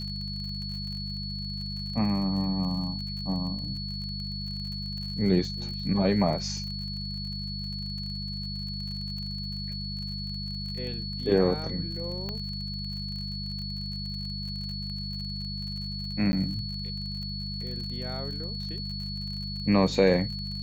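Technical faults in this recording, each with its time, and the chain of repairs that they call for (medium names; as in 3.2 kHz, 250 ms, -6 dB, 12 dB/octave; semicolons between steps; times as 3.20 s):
crackle 48 per s -37 dBFS
hum 50 Hz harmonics 4 -36 dBFS
whine 4.4 kHz -36 dBFS
12.29 s: pop -21 dBFS
16.32–16.33 s: dropout 10 ms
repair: de-click; band-stop 4.4 kHz, Q 30; de-hum 50 Hz, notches 4; interpolate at 16.32 s, 10 ms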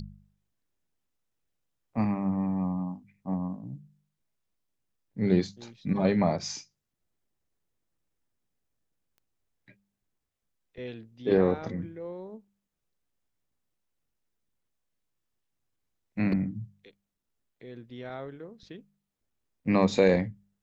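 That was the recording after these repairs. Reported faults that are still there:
nothing left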